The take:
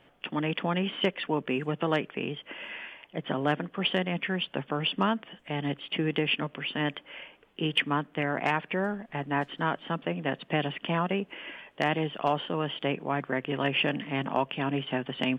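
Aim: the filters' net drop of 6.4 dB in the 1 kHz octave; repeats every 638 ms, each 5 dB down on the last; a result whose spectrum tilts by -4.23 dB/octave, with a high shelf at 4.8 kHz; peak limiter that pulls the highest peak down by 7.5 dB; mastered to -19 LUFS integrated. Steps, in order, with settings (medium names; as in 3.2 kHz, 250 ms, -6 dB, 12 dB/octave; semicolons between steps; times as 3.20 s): peaking EQ 1 kHz -8.5 dB; treble shelf 4.8 kHz -6.5 dB; peak limiter -22.5 dBFS; feedback delay 638 ms, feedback 56%, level -5 dB; trim +14 dB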